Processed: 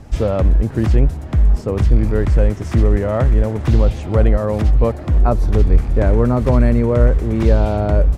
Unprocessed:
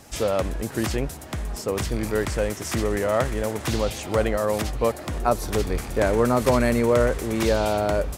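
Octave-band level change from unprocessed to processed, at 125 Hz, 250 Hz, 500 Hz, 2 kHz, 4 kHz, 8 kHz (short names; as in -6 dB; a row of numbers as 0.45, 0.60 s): +14.0 dB, +6.5 dB, +2.5 dB, -2.0 dB, -6.0 dB, under -10 dB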